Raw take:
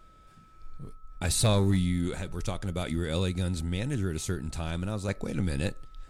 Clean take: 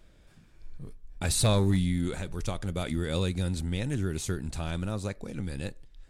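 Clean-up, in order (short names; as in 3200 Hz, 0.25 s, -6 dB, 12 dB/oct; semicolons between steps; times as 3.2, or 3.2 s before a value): notch 1300 Hz, Q 30; gain 0 dB, from 5.08 s -5.5 dB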